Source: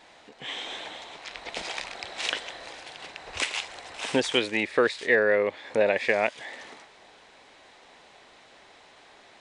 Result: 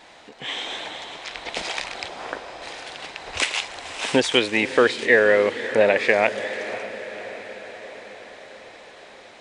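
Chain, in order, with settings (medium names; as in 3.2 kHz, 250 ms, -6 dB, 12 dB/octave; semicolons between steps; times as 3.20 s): 2.08–2.62 s: low-pass 1.4 kHz 24 dB/octave; echo that smears into a reverb 539 ms, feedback 62%, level -13 dB; trim +5.5 dB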